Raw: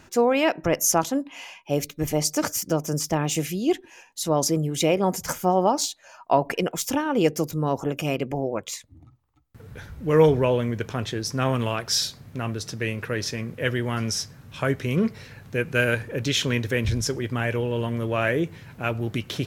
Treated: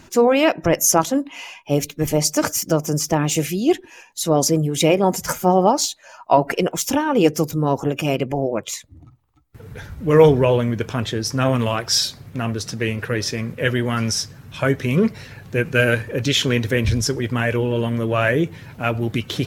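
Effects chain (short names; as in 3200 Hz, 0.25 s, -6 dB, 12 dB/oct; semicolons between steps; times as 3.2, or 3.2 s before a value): bin magnitudes rounded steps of 15 dB; gain +5.5 dB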